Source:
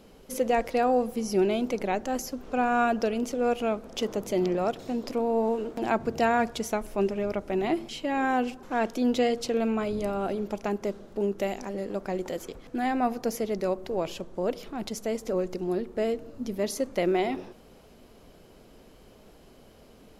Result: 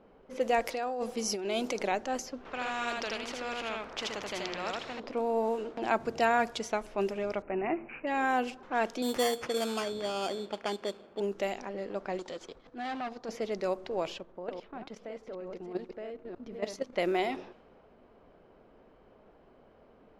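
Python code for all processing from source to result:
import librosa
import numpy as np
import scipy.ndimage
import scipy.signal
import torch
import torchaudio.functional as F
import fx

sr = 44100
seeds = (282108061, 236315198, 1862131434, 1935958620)

y = fx.chain(x, sr, fx.bass_treble(bass_db=-3, treble_db=5),
    fx.over_compress(threshold_db=-28.0, ratio=-1.0), at=(0.67, 1.92))
y = fx.chain(y, sr, fx.echo_single(ms=80, db=-3.0),
    fx.spectral_comp(ratio=2.0), at=(2.45, 5.0))
y = fx.chain(y, sr, fx.air_absorb(metres=190.0),
    fx.resample_bad(factor=8, down='none', up='filtered'), at=(7.42, 8.07))
y = fx.chain(y, sr, fx.highpass(hz=130.0, slope=6),
    fx.bass_treble(bass_db=-2, treble_db=-4),
    fx.sample_hold(seeds[0], rate_hz=3900.0, jitter_pct=0), at=(9.02, 11.2))
y = fx.chain(y, sr, fx.band_shelf(hz=5600.0, db=11.0, octaves=1.7),
    fx.transient(attack_db=-11, sustain_db=-7),
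    fx.clip_hard(threshold_db=-30.0), at=(12.19, 13.29))
y = fx.chain(y, sr, fx.reverse_delay(ms=310, wet_db=-6.0),
    fx.level_steps(step_db=12), at=(14.18, 16.93))
y = fx.env_lowpass(y, sr, base_hz=1300.0, full_db=-22.0)
y = fx.low_shelf(y, sr, hz=350.0, db=-10.5)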